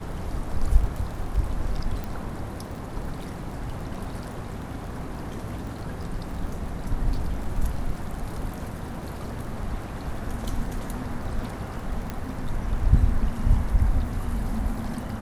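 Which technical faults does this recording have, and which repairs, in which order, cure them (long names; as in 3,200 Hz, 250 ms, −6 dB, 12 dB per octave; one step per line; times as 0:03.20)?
surface crackle 23 per second −34 dBFS
0:02.04: click
0:12.10: click −17 dBFS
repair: click removal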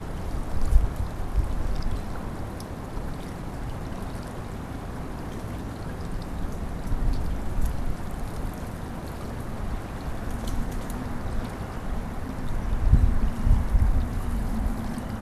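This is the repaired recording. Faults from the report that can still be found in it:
none of them is left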